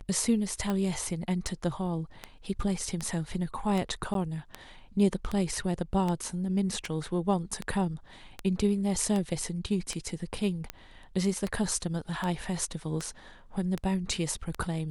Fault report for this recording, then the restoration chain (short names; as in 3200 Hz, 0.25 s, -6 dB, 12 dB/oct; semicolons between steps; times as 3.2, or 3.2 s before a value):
tick 78 rpm -18 dBFS
4.14–4.15 gap 12 ms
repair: de-click; interpolate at 4.14, 12 ms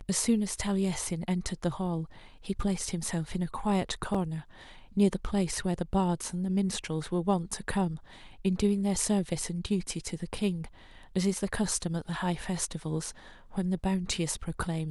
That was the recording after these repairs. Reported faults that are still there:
none